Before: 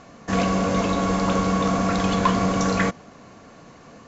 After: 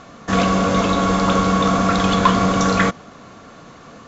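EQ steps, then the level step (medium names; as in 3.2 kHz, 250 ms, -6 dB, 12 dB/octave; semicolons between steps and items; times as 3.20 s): peaking EQ 1.3 kHz +6.5 dB 0.33 oct; peaking EQ 3.5 kHz +6 dB 0.29 oct; +4.0 dB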